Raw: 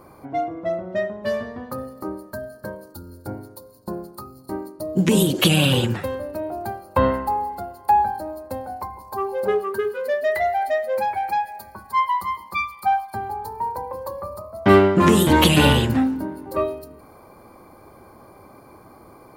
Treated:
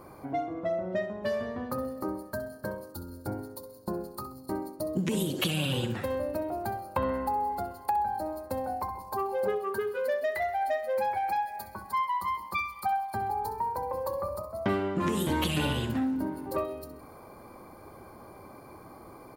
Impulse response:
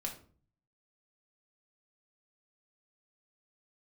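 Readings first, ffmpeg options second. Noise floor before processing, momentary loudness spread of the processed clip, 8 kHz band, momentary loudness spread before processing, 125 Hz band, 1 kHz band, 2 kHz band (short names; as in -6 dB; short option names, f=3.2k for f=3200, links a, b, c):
-48 dBFS, 20 LU, -11.5 dB, 19 LU, -11.5 dB, -8.0 dB, -10.0 dB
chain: -filter_complex "[0:a]acompressor=threshold=-26dB:ratio=4,asplit=2[a][b];[b]aecho=0:1:65|130|195|260:0.237|0.0949|0.0379|0.0152[c];[a][c]amix=inputs=2:normalize=0,volume=-2dB"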